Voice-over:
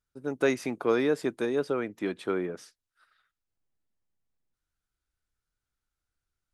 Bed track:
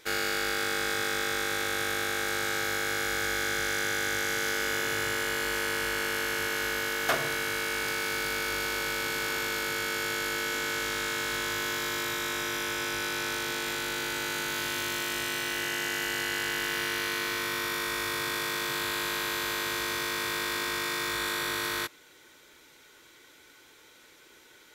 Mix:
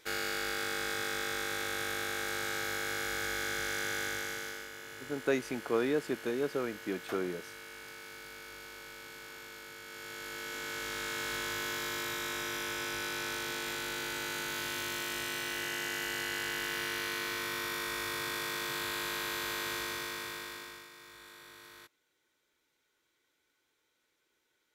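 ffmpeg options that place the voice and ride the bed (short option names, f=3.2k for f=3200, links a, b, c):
-filter_complex "[0:a]adelay=4850,volume=-5dB[a];[1:a]volume=6.5dB,afade=t=out:st=4.01:d=0.69:silence=0.266073,afade=t=in:st=9.84:d=1.44:silence=0.251189,afade=t=out:st=19.73:d=1.16:silence=0.141254[b];[a][b]amix=inputs=2:normalize=0"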